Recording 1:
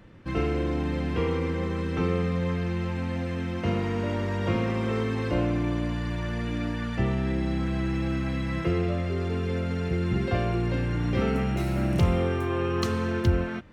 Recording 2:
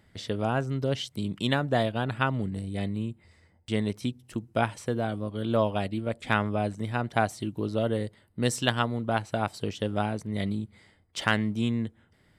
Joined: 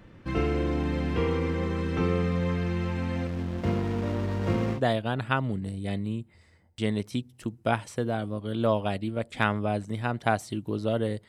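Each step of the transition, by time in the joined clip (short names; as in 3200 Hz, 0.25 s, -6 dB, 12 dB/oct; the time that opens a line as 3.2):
recording 1
3.27–4.81 backlash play -28.5 dBFS
4.77 switch to recording 2 from 1.67 s, crossfade 0.08 s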